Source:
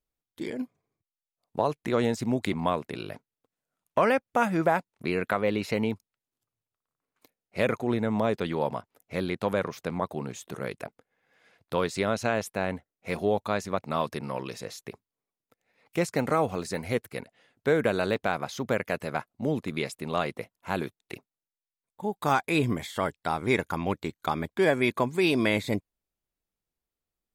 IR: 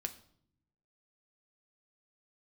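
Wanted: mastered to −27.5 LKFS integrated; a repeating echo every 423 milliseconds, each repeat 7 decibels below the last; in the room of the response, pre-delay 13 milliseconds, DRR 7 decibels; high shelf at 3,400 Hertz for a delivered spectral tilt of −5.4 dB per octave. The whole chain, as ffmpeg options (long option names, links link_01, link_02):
-filter_complex "[0:a]highshelf=frequency=3400:gain=-7,aecho=1:1:423|846|1269|1692|2115:0.447|0.201|0.0905|0.0407|0.0183,asplit=2[link_01][link_02];[1:a]atrim=start_sample=2205,adelay=13[link_03];[link_02][link_03]afir=irnorm=-1:irlink=0,volume=-6dB[link_04];[link_01][link_04]amix=inputs=2:normalize=0,volume=0.5dB"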